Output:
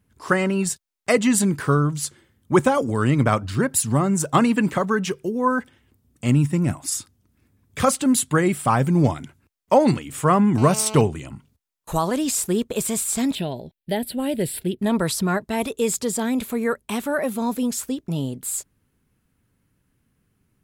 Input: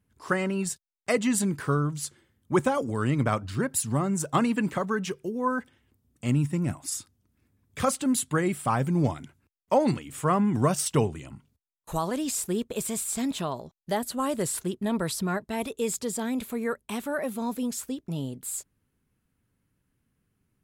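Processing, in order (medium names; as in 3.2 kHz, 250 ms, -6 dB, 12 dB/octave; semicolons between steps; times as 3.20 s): 10.58–11.01 s: mobile phone buzz -40 dBFS; 13.35–14.79 s: static phaser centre 2.8 kHz, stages 4; trim +6.5 dB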